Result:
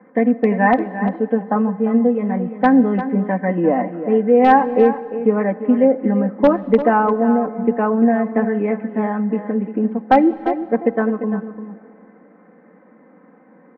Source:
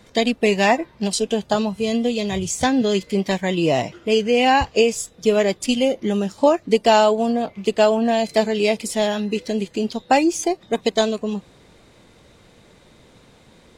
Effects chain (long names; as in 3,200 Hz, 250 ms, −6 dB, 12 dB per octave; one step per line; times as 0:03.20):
Chebyshev band-pass filter 170–1,900 Hz, order 4
comb filter 3.9 ms, depth 79%
in parallel at −9.5 dB: wrap-around overflow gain 4 dB
on the sum: high-frequency loss of the air 390 metres
single-tap delay 347 ms −11.5 dB
on a send at −17 dB: convolution reverb RT60 3.2 s, pre-delay 18 ms